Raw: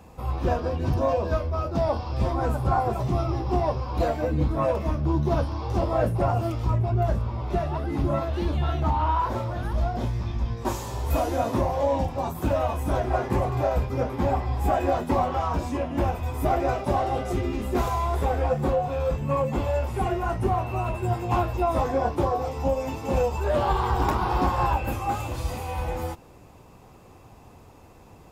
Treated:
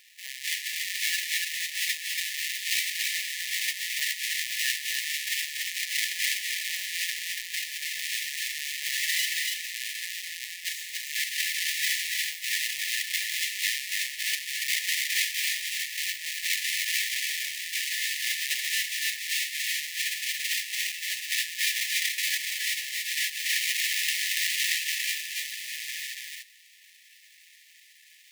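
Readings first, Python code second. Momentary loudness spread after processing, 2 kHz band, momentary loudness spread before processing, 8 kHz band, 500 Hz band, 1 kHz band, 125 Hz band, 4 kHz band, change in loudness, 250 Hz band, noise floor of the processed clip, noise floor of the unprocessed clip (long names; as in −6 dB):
6 LU, +11.5 dB, 5 LU, +18.0 dB, below −40 dB, below −40 dB, below −40 dB, +17.0 dB, −1.5 dB, below −40 dB, −56 dBFS, −50 dBFS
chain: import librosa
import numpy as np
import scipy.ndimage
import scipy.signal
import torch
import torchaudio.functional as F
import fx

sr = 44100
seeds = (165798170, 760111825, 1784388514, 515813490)

y = fx.halfwave_hold(x, sr)
y = fx.brickwall_highpass(y, sr, low_hz=1700.0)
y = y + 10.0 ** (-3.0 / 20.0) * np.pad(y, (int(285 * sr / 1000.0), 0))[:len(y)]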